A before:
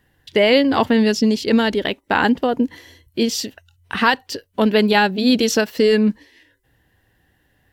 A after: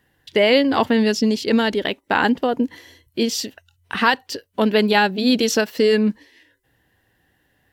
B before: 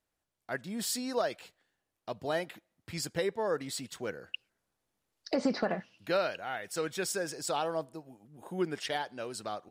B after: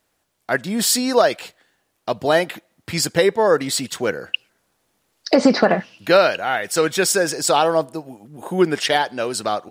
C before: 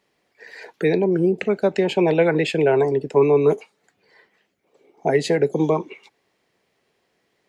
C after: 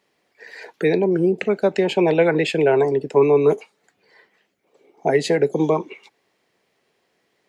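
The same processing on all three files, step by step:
bass shelf 99 Hz -8 dB; normalise loudness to -19 LUFS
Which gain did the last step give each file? -0.5 dB, +16.0 dB, +1.5 dB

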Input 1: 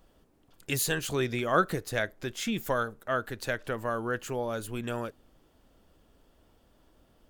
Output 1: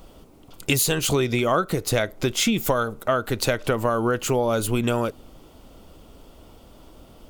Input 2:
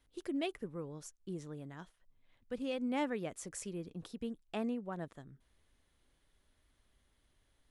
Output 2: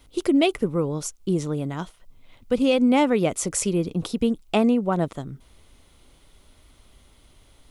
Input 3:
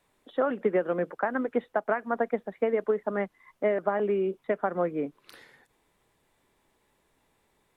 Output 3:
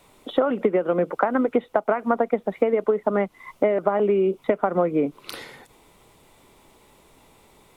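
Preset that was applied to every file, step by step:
peaking EQ 1.7 kHz -12 dB 0.22 oct; compression 8:1, threshold -33 dBFS; normalise loudness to -23 LUFS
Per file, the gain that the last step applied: +15.5 dB, +19.0 dB, +16.0 dB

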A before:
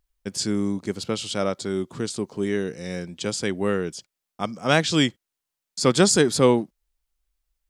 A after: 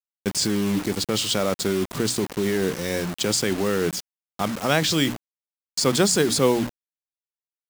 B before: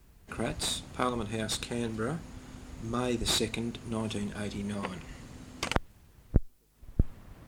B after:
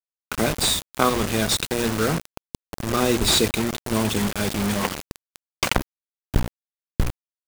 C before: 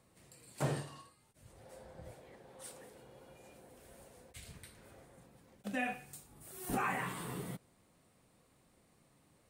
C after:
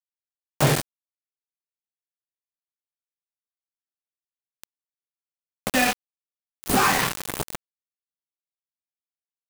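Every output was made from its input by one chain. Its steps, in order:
hum notches 60/120/180/240/300 Hz; in parallel at 0 dB: compressor with a negative ratio -28 dBFS, ratio -0.5; on the sum: bit crusher 5-bit; normalise loudness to -23 LUFS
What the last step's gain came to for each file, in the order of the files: -2.0 dB, +4.0 dB, +8.5 dB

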